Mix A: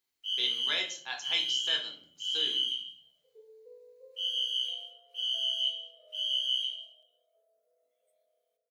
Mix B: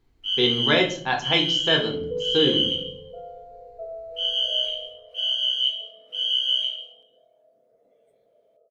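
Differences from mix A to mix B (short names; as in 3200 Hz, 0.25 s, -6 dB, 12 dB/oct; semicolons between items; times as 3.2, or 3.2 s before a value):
second sound: entry -1.55 s; master: remove differentiator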